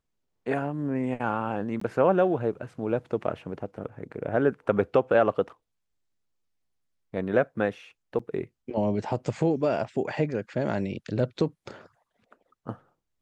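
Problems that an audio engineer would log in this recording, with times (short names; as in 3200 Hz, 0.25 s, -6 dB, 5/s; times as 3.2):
1.8–1.81 gap 14 ms
8.19 gap 4.3 ms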